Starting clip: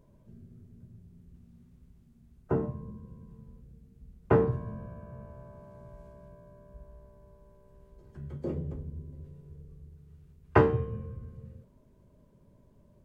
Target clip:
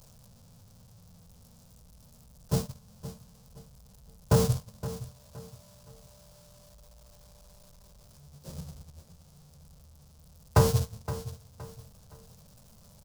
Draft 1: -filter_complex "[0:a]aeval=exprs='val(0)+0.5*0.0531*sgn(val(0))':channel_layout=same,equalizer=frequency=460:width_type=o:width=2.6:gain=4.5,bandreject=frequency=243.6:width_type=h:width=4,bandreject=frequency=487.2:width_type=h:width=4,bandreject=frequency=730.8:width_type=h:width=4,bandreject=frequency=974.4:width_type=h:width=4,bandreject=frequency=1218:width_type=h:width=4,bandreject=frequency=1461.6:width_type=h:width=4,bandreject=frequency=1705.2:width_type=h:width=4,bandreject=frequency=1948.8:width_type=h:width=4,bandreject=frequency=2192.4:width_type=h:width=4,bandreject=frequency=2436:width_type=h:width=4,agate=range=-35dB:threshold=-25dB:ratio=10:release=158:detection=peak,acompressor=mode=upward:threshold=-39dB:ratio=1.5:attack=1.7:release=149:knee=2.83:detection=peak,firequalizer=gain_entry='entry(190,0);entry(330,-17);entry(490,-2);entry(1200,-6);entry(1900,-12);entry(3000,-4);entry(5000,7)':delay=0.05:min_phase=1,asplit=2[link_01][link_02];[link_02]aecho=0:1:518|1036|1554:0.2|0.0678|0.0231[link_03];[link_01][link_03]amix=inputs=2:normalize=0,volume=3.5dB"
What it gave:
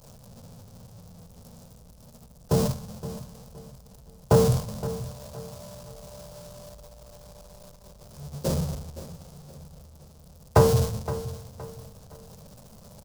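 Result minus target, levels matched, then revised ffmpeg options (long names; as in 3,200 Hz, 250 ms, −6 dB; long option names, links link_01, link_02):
500 Hz band +3.5 dB
-filter_complex "[0:a]aeval=exprs='val(0)+0.5*0.0531*sgn(val(0))':channel_layout=same,equalizer=frequency=460:width_type=o:width=2.6:gain=-2.5,bandreject=frequency=243.6:width_type=h:width=4,bandreject=frequency=487.2:width_type=h:width=4,bandreject=frequency=730.8:width_type=h:width=4,bandreject=frequency=974.4:width_type=h:width=4,bandreject=frequency=1218:width_type=h:width=4,bandreject=frequency=1461.6:width_type=h:width=4,bandreject=frequency=1705.2:width_type=h:width=4,bandreject=frequency=1948.8:width_type=h:width=4,bandreject=frequency=2192.4:width_type=h:width=4,bandreject=frequency=2436:width_type=h:width=4,agate=range=-35dB:threshold=-25dB:ratio=10:release=158:detection=peak,acompressor=mode=upward:threshold=-39dB:ratio=1.5:attack=1.7:release=149:knee=2.83:detection=peak,firequalizer=gain_entry='entry(190,0);entry(330,-17);entry(490,-2);entry(1200,-6);entry(1900,-12);entry(3000,-4);entry(5000,7)':delay=0.05:min_phase=1,asplit=2[link_01][link_02];[link_02]aecho=0:1:518|1036|1554:0.2|0.0678|0.0231[link_03];[link_01][link_03]amix=inputs=2:normalize=0,volume=3.5dB"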